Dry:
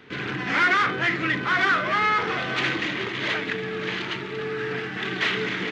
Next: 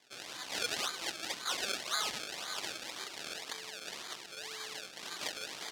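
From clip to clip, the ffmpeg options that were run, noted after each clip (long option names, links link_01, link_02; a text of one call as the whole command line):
ffmpeg -i in.wav -af "acrusher=samples=31:mix=1:aa=0.000001:lfo=1:lforange=31:lforate=1.9,bandpass=frequency=4600:width_type=q:width=1:csg=0,volume=-2.5dB" out.wav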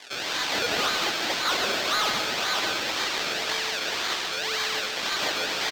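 ffmpeg -i in.wav -filter_complex "[0:a]asplit=2[link_01][link_02];[link_02]highpass=frequency=720:poles=1,volume=29dB,asoftclip=type=tanh:threshold=-15dB[link_03];[link_01][link_03]amix=inputs=2:normalize=0,lowpass=frequency=5000:poles=1,volume=-6dB,aecho=1:1:142.9|230.3:0.501|0.316" out.wav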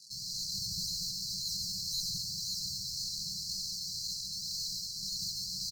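ffmpeg -i in.wav -af "afftfilt=real='re*(1-between(b*sr/4096,200,4000))':imag='im*(1-between(b*sr/4096,200,4000))':win_size=4096:overlap=0.75,lowshelf=frequency=110:gain=7,volume=-3.5dB" out.wav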